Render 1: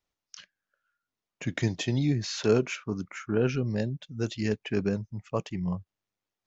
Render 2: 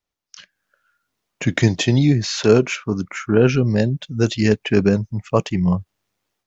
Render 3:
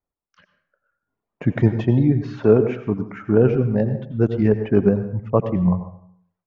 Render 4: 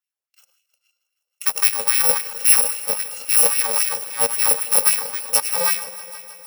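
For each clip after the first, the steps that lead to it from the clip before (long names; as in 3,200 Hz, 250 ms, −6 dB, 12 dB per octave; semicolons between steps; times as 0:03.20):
automatic gain control gain up to 13.5 dB
low-pass filter 1,100 Hz 12 dB per octave; reverb reduction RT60 0.78 s; dense smooth reverb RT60 0.62 s, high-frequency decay 0.75×, pre-delay 75 ms, DRR 9.5 dB
samples in bit-reversed order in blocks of 128 samples; auto-filter high-pass sine 3.7 Hz 500–2,400 Hz; echo machine with several playback heads 157 ms, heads all three, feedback 59%, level −22 dB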